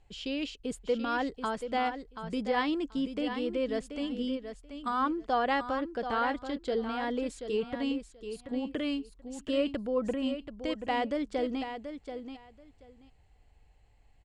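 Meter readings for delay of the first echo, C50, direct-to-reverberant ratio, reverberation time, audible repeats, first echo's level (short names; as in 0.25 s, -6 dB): 0.732 s, none, none, none, 2, -9.0 dB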